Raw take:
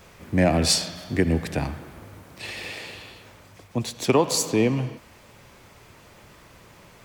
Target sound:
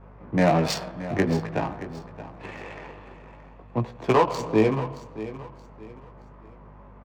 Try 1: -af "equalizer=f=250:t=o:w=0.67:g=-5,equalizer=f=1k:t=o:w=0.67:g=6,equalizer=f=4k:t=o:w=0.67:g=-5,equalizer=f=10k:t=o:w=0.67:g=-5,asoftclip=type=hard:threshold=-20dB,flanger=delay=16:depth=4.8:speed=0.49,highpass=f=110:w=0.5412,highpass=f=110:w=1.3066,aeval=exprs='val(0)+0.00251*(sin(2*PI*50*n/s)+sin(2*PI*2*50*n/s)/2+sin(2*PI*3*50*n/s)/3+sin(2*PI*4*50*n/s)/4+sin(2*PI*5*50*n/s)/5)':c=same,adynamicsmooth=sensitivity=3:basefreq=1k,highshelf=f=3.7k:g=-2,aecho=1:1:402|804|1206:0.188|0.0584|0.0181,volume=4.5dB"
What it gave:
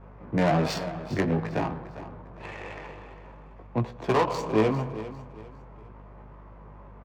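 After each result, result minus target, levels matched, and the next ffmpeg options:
echo 0.222 s early; hard clip: distortion +8 dB
-af "equalizer=f=250:t=o:w=0.67:g=-5,equalizer=f=1k:t=o:w=0.67:g=6,equalizer=f=4k:t=o:w=0.67:g=-5,equalizer=f=10k:t=o:w=0.67:g=-5,asoftclip=type=hard:threshold=-20dB,flanger=delay=16:depth=4.8:speed=0.49,highpass=f=110:w=0.5412,highpass=f=110:w=1.3066,aeval=exprs='val(0)+0.00251*(sin(2*PI*50*n/s)+sin(2*PI*2*50*n/s)/2+sin(2*PI*3*50*n/s)/3+sin(2*PI*4*50*n/s)/4+sin(2*PI*5*50*n/s)/5)':c=same,adynamicsmooth=sensitivity=3:basefreq=1k,highshelf=f=3.7k:g=-2,aecho=1:1:624|1248|1872:0.188|0.0584|0.0181,volume=4.5dB"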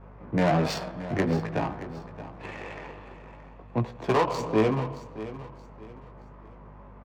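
hard clip: distortion +8 dB
-af "equalizer=f=250:t=o:w=0.67:g=-5,equalizer=f=1k:t=o:w=0.67:g=6,equalizer=f=4k:t=o:w=0.67:g=-5,equalizer=f=10k:t=o:w=0.67:g=-5,asoftclip=type=hard:threshold=-13.5dB,flanger=delay=16:depth=4.8:speed=0.49,highpass=f=110:w=0.5412,highpass=f=110:w=1.3066,aeval=exprs='val(0)+0.00251*(sin(2*PI*50*n/s)+sin(2*PI*2*50*n/s)/2+sin(2*PI*3*50*n/s)/3+sin(2*PI*4*50*n/s)/4+sin(2*PI*5*50*n/s)/5)':c=same,adynamicsmooth=sensitivity=3:basefreq=1k,highshelf=f=3.7k:g=-2,aecho=1:1:624|1248|1872:0.188|0.0584|0.0181,volume=4.5dB"

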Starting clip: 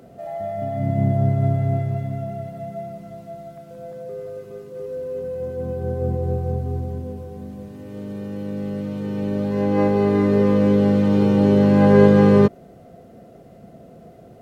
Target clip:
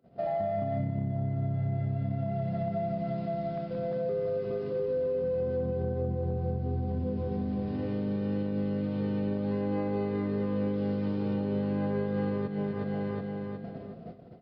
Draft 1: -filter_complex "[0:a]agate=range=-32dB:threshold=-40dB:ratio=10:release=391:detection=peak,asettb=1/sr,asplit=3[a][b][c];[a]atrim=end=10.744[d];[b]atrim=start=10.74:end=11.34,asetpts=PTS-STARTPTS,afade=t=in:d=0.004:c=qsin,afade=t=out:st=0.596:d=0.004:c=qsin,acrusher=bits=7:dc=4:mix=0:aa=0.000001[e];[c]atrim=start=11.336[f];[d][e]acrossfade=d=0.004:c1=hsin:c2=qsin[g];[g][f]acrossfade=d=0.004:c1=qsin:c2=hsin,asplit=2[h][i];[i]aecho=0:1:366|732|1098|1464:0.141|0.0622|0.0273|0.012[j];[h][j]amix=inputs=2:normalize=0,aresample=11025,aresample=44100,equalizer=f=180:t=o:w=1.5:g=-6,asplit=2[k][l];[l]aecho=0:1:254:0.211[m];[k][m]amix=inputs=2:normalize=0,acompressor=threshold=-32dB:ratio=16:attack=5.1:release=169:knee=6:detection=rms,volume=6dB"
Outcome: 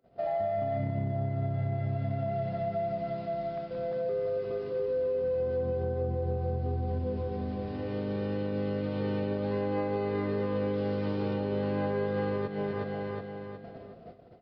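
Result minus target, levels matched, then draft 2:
250 Hz band -3.0 dB
-filter_complex "[0:a]agate=range=-32dB:threshold=-40dB:ratio=10:release=391:detection=peak,asettb=1/sr,asplit=3[a][b][c];[a]atrim=end=10.744[d];[b]atrim=start=10.74:end=11.34,asetpts=PTS-STARTPTS,afade=t=in:d=0.004:c=qsin,afade=t=out:st=0.596:d=0.004:c=qsin,acrusher=bits=7:dc=4:mix=0:aa=0.000001[e];[c]atrim=start=11.336[f];[d][e]acrossfade=d=0.004:c1=hsin:c2=qsin[g];[g][f]acrossfade=d=0.004:c1=qsin:c2=hsin,asplit=2[h][i];[i]aecho=0:1:366|732|1098|1464:0.141|0.0622|0.0273|0.012[j];[h][j]amix=inputs=2:normalize=0,aresample=11025,aresample=44100,equalizer=f=180:t=o:w=1.5:g=3.5,asplit=2[k][l];[l]aecho=0:1:254:0.211[m];[k][m]amix=inputs=2:normalize=0,acompressor=threshold=-32dB:ratio=16:attack=5.1:release=169:knee=6:detection=rms,volume=6dB"

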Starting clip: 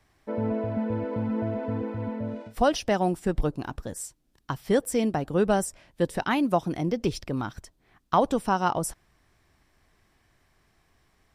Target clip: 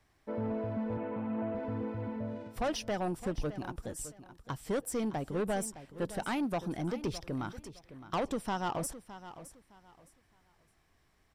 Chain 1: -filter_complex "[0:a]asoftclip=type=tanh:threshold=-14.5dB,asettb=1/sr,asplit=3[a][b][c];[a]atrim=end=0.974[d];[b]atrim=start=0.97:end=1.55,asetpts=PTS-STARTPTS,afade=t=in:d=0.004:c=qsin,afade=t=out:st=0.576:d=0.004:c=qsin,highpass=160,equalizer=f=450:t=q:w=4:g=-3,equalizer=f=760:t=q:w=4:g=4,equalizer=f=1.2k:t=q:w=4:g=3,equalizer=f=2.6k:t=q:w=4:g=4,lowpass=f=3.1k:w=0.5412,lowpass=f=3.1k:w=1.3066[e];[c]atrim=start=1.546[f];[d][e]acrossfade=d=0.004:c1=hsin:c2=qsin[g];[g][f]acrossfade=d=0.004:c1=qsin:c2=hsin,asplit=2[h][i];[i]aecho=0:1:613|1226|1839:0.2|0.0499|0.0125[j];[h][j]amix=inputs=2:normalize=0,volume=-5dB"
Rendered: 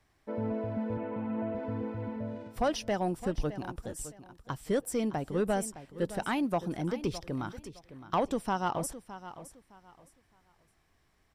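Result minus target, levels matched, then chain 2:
soft clip: distortion -9 dB
-filter_complex "[0:a]asoftclip=type=tanh:threshold=-22.5dB,asettb=1/sr,asplit=3[a][b][c];[a]atrim=end=0.974[d];[b]atrim=start=0.97:end=1.55,asetpts=PTS-STARTPTS,afade=t=in:d=0.004:c=qsin,afade=t=out:st=0.576:d=0.004:c=qsin,highpass=160,equalizer=f=450:t=q:w=4:g=-3,equalizer=f=760:t=q:w=4:g=4,equalizer=f=1.2k:t=q:w=4:g=3,equalizer=f=2.6k:t=q:w=4:g=4,lowpass=f=3.1k:w=0.5412,lowpass=f=3.1k:w=1.3066[e];[c]atrim=start=1.546[f];[d][e]acrossfade=d=0.004:c1=hsin:c2=qsin[g];[g][f]acrossfade=d=0.004:c1=qsin:c2=hsin,asplit=2[h][i];[i]aecho=0:1:613|1226|1839:0.2|0.0499|0.0125[j];[h][j]amix=inputs=2:normalize=0,volume=-5dB"

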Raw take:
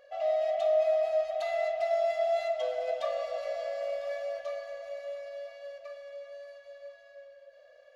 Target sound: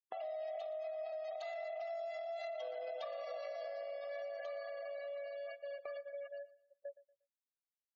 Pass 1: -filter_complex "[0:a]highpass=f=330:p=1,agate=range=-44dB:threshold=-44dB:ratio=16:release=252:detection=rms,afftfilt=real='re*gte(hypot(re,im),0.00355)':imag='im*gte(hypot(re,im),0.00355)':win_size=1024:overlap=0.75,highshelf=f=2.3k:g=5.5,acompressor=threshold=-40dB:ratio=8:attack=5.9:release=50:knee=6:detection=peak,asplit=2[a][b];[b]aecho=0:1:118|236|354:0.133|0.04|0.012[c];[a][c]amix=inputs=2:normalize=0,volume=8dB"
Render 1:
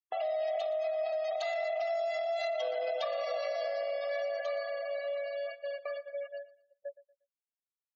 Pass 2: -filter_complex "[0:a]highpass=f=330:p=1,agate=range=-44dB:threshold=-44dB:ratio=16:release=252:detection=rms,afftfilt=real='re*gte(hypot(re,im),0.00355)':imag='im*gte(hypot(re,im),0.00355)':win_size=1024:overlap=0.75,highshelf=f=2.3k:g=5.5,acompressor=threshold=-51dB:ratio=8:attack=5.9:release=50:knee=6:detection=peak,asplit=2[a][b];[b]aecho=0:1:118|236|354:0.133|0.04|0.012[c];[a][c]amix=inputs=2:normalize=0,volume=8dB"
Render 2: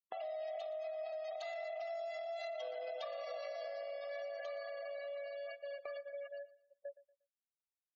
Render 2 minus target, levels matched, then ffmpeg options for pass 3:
4000 Hz band +3.0 dB
-filter_complex "[0:a]highpass=f=330:p=1,agate=range=-44dB:threshold=-44dB:ratio=16:release=252:detection=rms,afftfilt=real='re*gte(hypot(re,im),0.00355)':imag='im*gte(hypot(re,im),0.00355)':win_size=1024:overlap=0.75,acompressor=threshold=-51dB:ratio=8:attack=5.9:release=50:knee=6:detection=peak,asplit=2[a][b];[b]aecho=0:1:118|236|354:0.133|0.04|0.012[c];[a][c]amix=inputs=2:normalize=0,volume=8dB"

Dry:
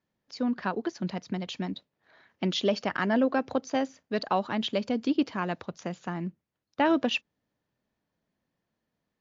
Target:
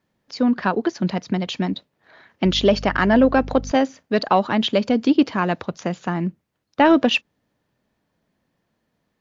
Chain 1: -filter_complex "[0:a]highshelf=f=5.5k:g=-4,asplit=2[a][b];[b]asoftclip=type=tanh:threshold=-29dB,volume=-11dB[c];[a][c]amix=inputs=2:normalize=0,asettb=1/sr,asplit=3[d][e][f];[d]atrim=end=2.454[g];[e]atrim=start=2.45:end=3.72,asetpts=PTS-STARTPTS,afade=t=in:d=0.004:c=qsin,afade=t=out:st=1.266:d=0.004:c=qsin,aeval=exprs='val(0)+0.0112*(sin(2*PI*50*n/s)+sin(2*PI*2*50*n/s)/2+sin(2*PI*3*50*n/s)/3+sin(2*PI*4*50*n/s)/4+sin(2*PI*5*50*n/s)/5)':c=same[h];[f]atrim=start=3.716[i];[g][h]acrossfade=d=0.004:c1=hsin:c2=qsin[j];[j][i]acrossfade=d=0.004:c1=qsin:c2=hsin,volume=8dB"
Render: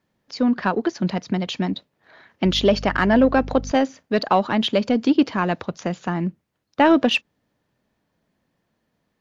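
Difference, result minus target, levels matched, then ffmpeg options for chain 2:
soft clip: distortion +8 dB
-filter_complex "[0:a]highshelf=f=5.5k:g=-4,asplit=2[a][b];[b]asoftclip=type=tanh:threshold=-19.5dB,volume=-11dB[c];[a][c]amix=inputs=2:normalize=0,asettb=1/sr,asplit=3[d][e][f];[d]atrim=end=2.454[g];[e]atrim=start=2.45:end=3.72,asetpts=PTS-STARTPTS,afade=t=in:d=0.004:c=qsin,afade=t=out:st=1.266:d=0.004:c=qsin,aeval=exprs='val(0)+0.0112*(sin(2*PI*50*n/s)+sin(2*PI*2*50*n/s)/2+sin(2*PI*3*50*n/s)/3+sin(2*PI*4*50*n/s)/4+sin(2*PI*5*50*n/s)/5)':c=same[h];[f]atrim=start=3.716[i];[g][h]acrossfade=d=0.004:c1=hsin:c2=qsin[j];[j][i]acrossfade=d=0.004:c1=qsin:c2=hsin,volume=8dB"

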